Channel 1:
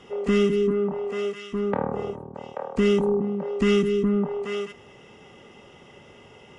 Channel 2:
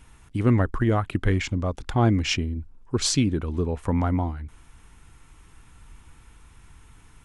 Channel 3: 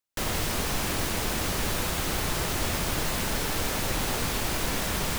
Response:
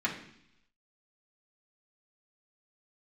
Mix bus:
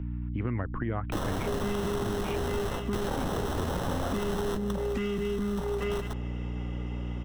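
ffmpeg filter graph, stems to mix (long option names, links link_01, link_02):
-filter_complex "[0:a]highshelf=frequency=4700:gain=-11,adelay=1350,volume=3dB[link_01];[1:a]lowpass=frequency=2600:width=0.5412,lowpass=frequency=2600:width=1.3066,volume=-4dB,asplit=2[link_02][link_03];[2:a]acrusher=samples=19:mix=1:aa=0.000001,adelay=950,volume=1.5dB[link_04];[link_03]apad=whole_len=270404[link_05];[link_04][link_05]sidechaingate=range=-15dB:threshold=-48dB:ratio=16:detection=peak[link_06];[link_01][link_02]amix=inputs=2:normalize=0,aeval=exprs='val(0)+0.0282*(sin(2*PI*60*n/s)+sin(2*PI*2*60*n/s)/2+sin(2*PI*3*60*n/s)/3+sin(2*PI*4*60*n/s)/4+sin(2*PI*5*60*n/s)/5)':channel_layout=same,alimiter=limit=-16.5dB:level=0:latency=1:release=188,volume=0dB[link_07];[link_06][link_07]amix=inputs=2:normalize=0,acrossover=split=100|1200[link_08][link_09][link_10];[link_08]acompressor=threshold=-35dB:ratio=4[link_11];[link_09]acompressor=threshold=-30dB:ratio=4[link_12];[link_10]acompressor=threshold=-40dB:ratio=4[link_13];[link_11][link_12][link_13]amix=inputs=3:normalize=0"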